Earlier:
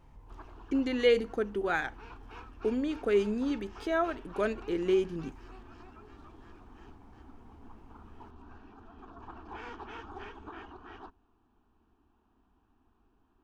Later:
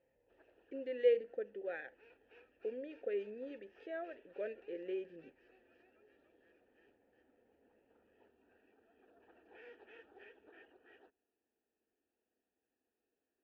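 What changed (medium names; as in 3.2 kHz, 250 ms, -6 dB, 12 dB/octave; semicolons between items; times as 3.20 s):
speech: add low-pass 2.5 kHz 6 dB/octave; master: add vowel filter e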